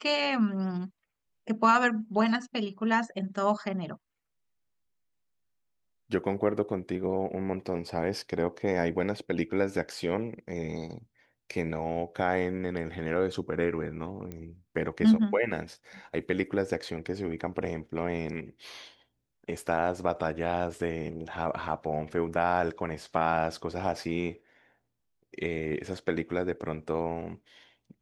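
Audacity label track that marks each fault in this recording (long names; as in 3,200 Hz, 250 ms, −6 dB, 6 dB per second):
14.320000	14.320000	click −25 dBFS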